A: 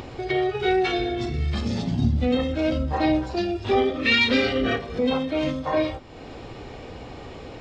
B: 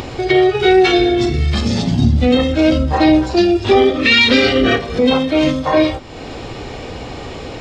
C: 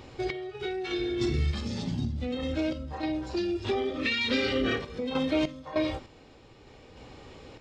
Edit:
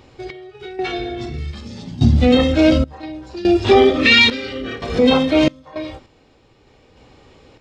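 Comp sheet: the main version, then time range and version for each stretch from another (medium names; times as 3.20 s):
C
0.79–1.38 s: from A
2.01–2.84 s: from B
3.45–4.30 s: from B
4.82–5.48 s: from B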